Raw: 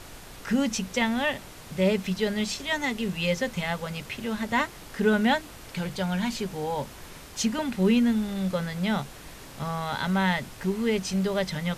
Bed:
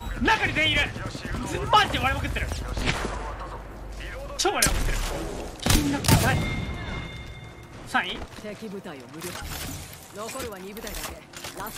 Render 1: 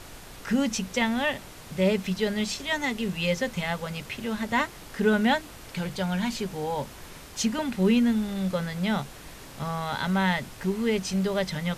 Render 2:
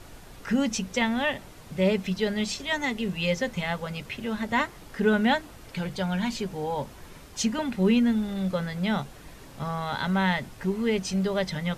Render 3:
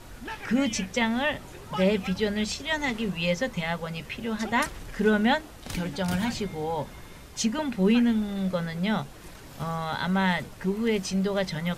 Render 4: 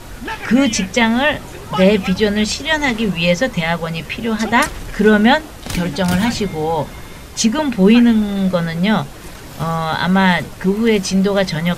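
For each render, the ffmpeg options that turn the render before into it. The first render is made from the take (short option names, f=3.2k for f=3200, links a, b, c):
-af anull
-af "afftdn=nr=6:nf=-45"
-filter_complex "[1:a]volume=-16.5dB[a];[0:a][a]amix=inputs=2:normalize=0"
-af "volume=11.5dB,alimiter=limit=-1dB:level=0:latency=1"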